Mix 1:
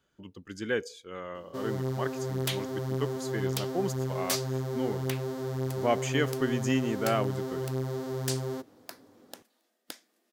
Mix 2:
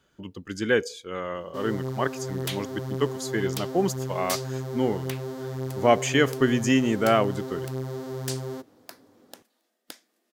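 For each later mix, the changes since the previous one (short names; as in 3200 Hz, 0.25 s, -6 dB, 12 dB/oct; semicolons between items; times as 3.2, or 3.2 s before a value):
speech +7.5 dB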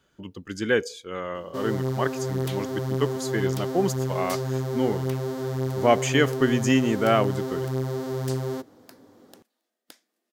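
first sound +4.5 dB; second sound -6.5 dB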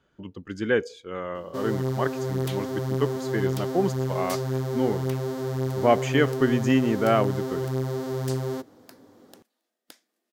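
speech: add LPF 2200 Hz 6 dB/oct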